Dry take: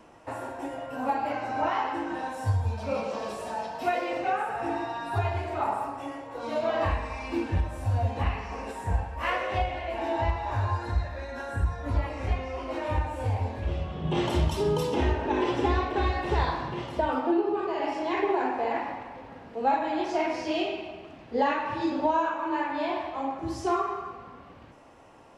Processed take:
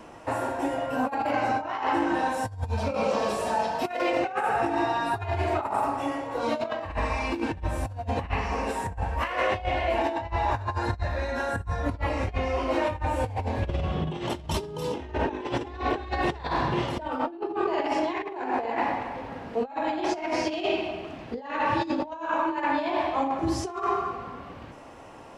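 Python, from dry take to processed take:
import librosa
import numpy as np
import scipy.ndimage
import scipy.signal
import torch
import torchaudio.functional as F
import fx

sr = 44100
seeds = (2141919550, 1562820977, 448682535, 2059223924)

y = fx.over_compress(x, sr, threshold_db=-31.0, ratio=-0.5)
y = y * 10.0 ** (4.0 / 20.0)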